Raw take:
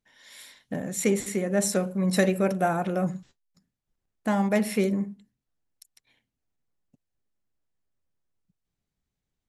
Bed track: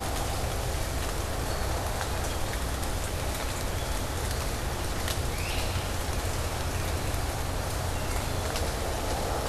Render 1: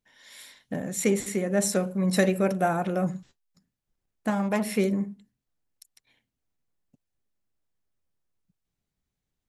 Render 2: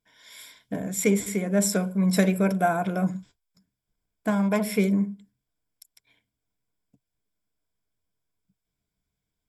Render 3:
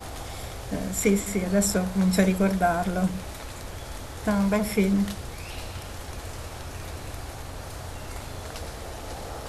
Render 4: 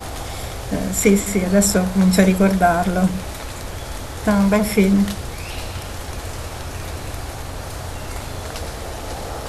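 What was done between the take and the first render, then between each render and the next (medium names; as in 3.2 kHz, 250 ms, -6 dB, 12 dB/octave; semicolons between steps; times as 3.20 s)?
4.30–4.76 s: transformer saturation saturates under 630 Hz
rippled EQ curve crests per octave 1.7, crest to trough 9 dB
add bed track -6.5 dB
trim +7.5 dB; peak limiter -2 dBFS, peak gain reduction 0.5 dB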